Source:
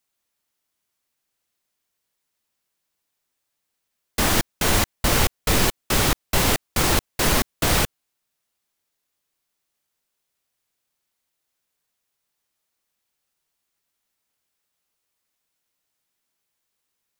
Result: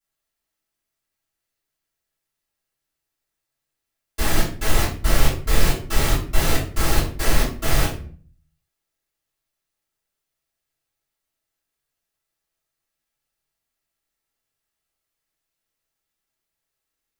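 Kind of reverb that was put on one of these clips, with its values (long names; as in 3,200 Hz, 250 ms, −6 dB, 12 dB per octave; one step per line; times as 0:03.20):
rectangular room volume 38 cubic metres, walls mixed, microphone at 2.9 metres
level −16.5 dB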